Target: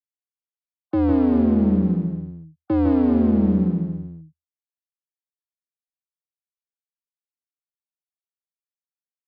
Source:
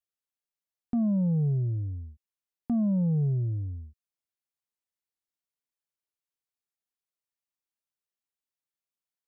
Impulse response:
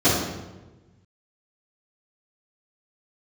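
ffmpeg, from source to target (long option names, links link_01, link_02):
-filter_complex "[0:a]afftfilt=real='re*gte(hypot(re,im),0.00355)':imag='im*gte(hypot(re,im),0.00355)':win_size=1024:overlap=0.75,equalizer=frequency=210:width=0.37:gain=7.5,alimiter=limit=-20dB:level=0:latency=1,aeval=exprs='clip(val(0),-1,0.0211)':channel_layout=same,afreqshift=81,asplit=2[link_01][link_02];[link_02]aecho=0:1:154|383:0.631|0.237[link_03];[link_01][link_03]amix=inputs=2:normalize=0,aresample=11025,aresample=44100,volume=7.5dB"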